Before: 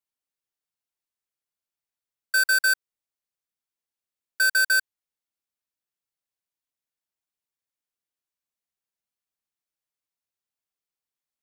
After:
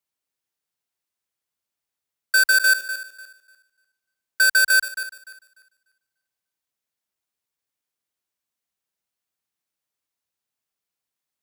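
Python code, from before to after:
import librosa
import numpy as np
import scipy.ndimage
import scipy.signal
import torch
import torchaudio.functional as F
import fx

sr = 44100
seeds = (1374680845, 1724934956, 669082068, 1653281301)

y = fx.reverse_delay_fb(x, sr, ms=148, feedback_pct=46, wet_db=-12)
y = scipy.signal.sosfilt(scipy.signal.butter(2, 49.0, 'highpass', fs=sr, output='sos'), y)
y = y * 10.0 ** (4.5 / 20.0)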